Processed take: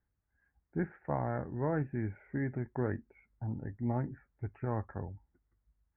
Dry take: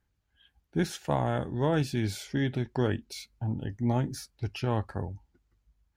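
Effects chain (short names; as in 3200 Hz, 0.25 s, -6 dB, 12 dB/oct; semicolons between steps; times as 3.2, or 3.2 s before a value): steep low-pass 2100 Hz 72 dB/oct; gain -6 dB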